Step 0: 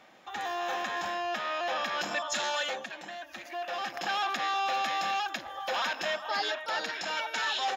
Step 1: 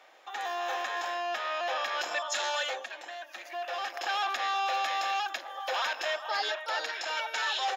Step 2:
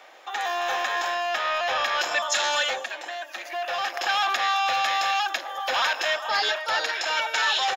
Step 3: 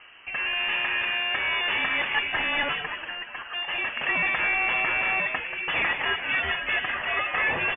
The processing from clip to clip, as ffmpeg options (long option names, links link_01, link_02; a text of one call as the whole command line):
ffmpeg -i in.wav -af "highpass=frequency=400:width=0.5412,highpass=frequency=400:width=1.3066" out.wav
ffmpeg -i in.wav -filter_complex "[0:a]acrossover=split=950|7000[link_01][link_02][link_03];[link_01]asoftclip=type=tanh:threshold=-36.5dB[link_04];[link_03]aecho=1:1:209:0.398[link_05];[link_04][link_02][link_05]amix=inputs=3:normalize=0,volume=8dB" out.wav
ffmpeg -i in.wav -filter_complex "[0:a]asubboost=boost=8.5:cutoff=140,asplit=6[link_01][link_02][link_03][link_04][link_05][link_06];[link_02]adelay=183,afreqshift=120,volume=-9dB[link_07];[link_03]adelay=366,afreqshift=240,volume=-16.7dB[link_08];[link_04]adelay=549,afreqshift=360,volume=-24.5dB[link_09];[link_05]adelay=732,afreqshift=480,volume=-32.2dB[link_10];[link_06]adelay=915,afreqshift=600,volume=-40dB[link_11];[link_01][link_07][link_08][link_09][link_10][link_11]amix=inputs=6:normalize=0,lowpass=frequency=3000:width_type=q:width=0.5098,lowpass=frequency=3000:width_type=q:width=0.6013,lowpass=frequency=3000:width_type=q:width=0.9,lowpass=frequency=3000:width_type=q:width=2.563,afreqshift=-3500" out.wav